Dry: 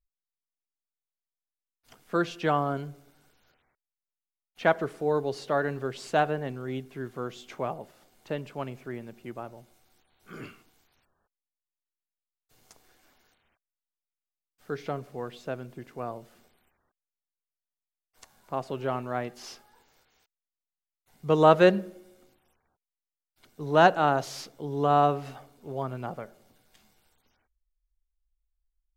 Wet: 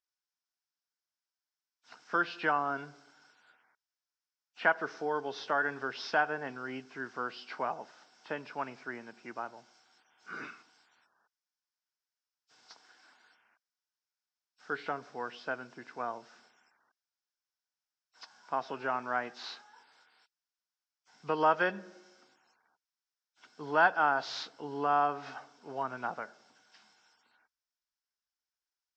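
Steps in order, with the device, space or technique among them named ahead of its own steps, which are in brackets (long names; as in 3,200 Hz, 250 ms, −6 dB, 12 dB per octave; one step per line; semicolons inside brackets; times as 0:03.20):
hearing aid with frequency lowering (hearing-aid frequency compression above 2,300 Hz 1.5 to 1; downward compressor 2 to 1, threshold −28 dBFS, peak gain reduction 9 dB; loudspeaker in its box 320–6,400 Hz, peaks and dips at 380 Hz −6 dB, 550 Hz −6 dB, 930 Hz +5 dB, 1,500 Hz +9 dB, 5,300 Hz +9 dB)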